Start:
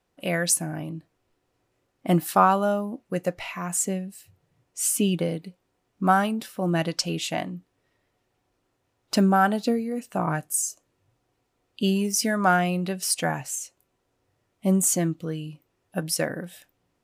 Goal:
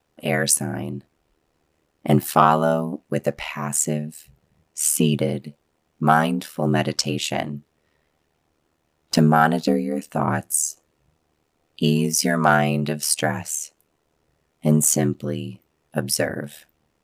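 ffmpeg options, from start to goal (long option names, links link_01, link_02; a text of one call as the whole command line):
ffmpeg -i in.wav -af "aeval=exprs='val(0)*sin(2*PI*38*n/s)':channel_layout=same,acontrast=85" out.wav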